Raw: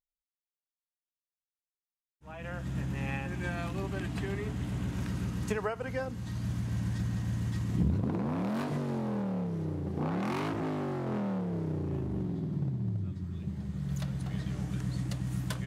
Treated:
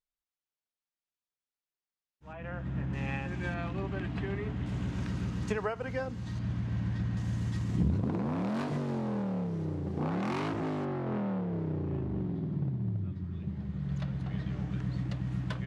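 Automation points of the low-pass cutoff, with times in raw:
5.7 kHz
from 2.33 s 2.3 kHz
from 2.93 s 5.5 kHz
from 3.54 s 3.2 kHz
from 4.66 s 6.1 kHz
from 6.39 s 3.5 kHz
from 7.17 s 7.9 kHz
from 10.85 s 3.3 kHz

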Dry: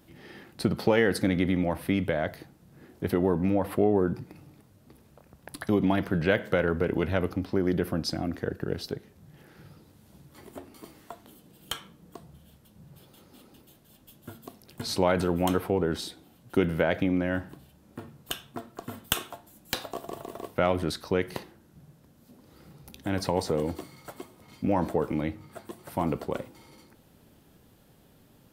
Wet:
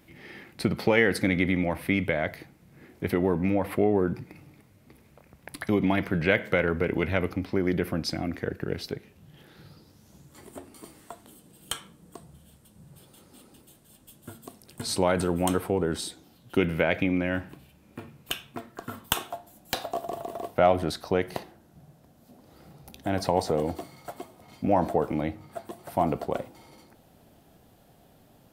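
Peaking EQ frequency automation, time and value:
peaking EQ +9.5 dB 0.43 oct
8.94 s 2.2 kHz
10.48 s 8.6 kHz
16.07 s 8.6 kHz
16.62 s 2.4 kHz
18.57 s 2.4 kHz
19.29 s 700 Hz

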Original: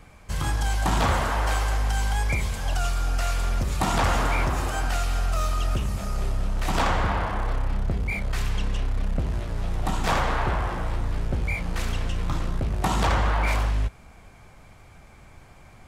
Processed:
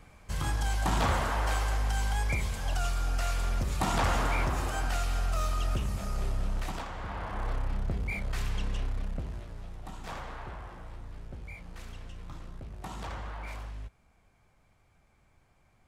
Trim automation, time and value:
6.57 s -5 dB
6.87 s -18 dB
7.46 s -6 dB
8.85 s -6 dB
9.82 s -17 dB

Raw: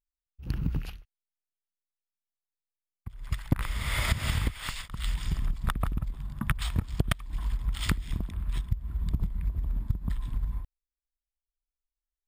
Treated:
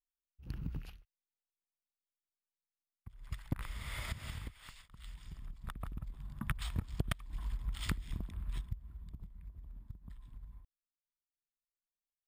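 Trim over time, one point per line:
3.70 s -11 dB
4.80 s -19 dB
5.34 s -19 dB
6.33 s -8.5 dB
8.58 s -8.5 dB
9.09 s -20 dB

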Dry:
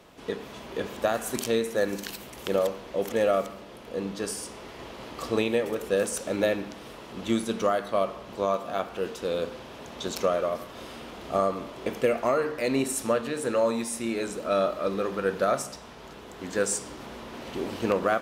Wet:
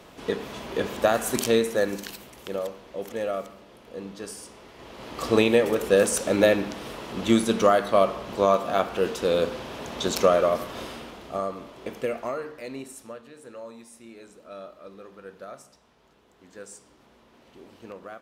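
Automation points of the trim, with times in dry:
1.58 s +4.5 dB
2.46 s -5.5 dB
4.74 s -5.5 dB
5.33 s +6 dB
10.78 s +6 dB
11.34 s -4.5 dB
12.14 s -4.5 dB
13.23 s -16.5 dB

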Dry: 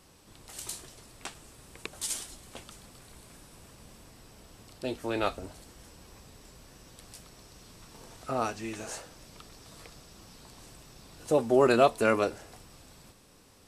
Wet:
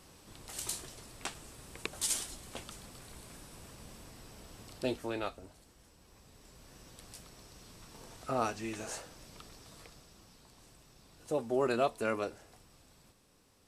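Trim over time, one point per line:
4.85 s +1 dB
5.31 s -10 dB
5.97 s -10 dB
6.78 s -2 dB
9.48 s -2 dB
10.44 s -8.5 dB

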